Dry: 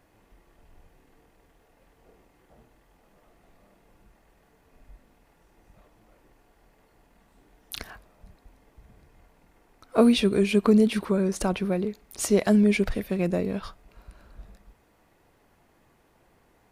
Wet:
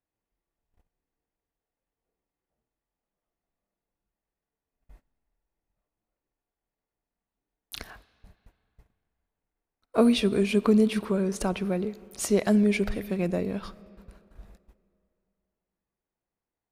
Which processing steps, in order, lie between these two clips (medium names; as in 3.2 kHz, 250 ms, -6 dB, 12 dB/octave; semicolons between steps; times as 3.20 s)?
gate -49 dBFS, range -27 dB; on a send: reverberation RT60 2.8 s, pre-delay 10 ms, DRR 19.5 dB; on the sum: trim -2 dB